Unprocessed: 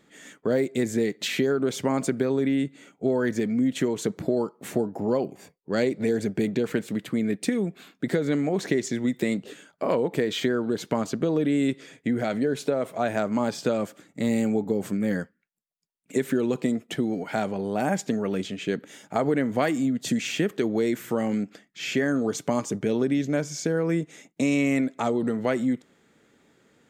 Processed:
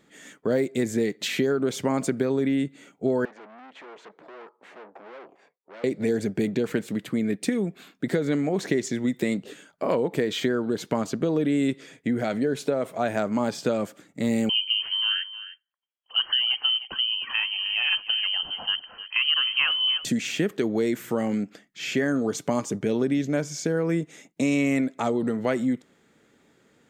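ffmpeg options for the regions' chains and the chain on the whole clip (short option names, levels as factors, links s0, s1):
-filter_complex "[0:a]asettb=1/sr,asplit=3[s0][s1][s2];[s0]atrim=end=3.254[s3];[s1]atrim=start=3.25:end=5.84,asetpts=PTS-STARTPTS,afade=t=in:d=0.004:c=qsin,afade=t=out:st=2.586:d=0.004:c=qsin,aeval=exprs='(tanh(70.8*val(0)+0.7)-tanh(0.7))/70.8':c=same,highpass=540,lowpass=2400[s4];[s2]atrim=start=5.836[s5];[s3][s4]acrossfade=d=0.004:c1=hsin:c2=qsin[s6];[s6][s5]acrossfade=d=0.004:c1=qsin:c2=hsin,asettb=1/sr,asplit=3[s7][s8][s9];[s7]atrim=end=14.494[s10];[s8]atrim=start=14.49:end=20.05,asetpts=PTS-STARTPTS,afade=t=in:d=0.004:c=qsin,afade=t=out:st=5.556:d=0.004:c=qsin,lowpass=f=2800:t=q:w=0.5098,lowpass=f=2800:t=q:w=0.6013,lowpass=f=2800:t=q:w=0.9,lowpass=f=2800:t=q:w=2.563,afreqshift=-3300,aecho=1:1:309:0.2,atrim=end_sample=245196[s11];[s9]atrim=start=20.046[s12];[s10][s11]acrossfade=d=0.004:c1=hsin:c2=qsin[s13];[s13][s12]acrossfade=d=0.004:c1=qsin:c2=hsin"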